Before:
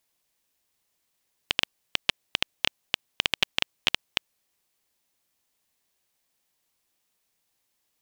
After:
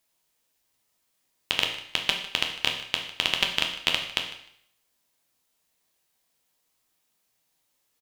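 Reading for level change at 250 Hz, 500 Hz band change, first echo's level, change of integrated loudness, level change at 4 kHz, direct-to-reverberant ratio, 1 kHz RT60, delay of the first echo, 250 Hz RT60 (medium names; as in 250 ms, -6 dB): +2.0 dB, +2.5 dB, -17.0 dB, +2.0 dB, +2.0 dB, 2.0 dB, 0.65 s, 152 ms, 0.65 s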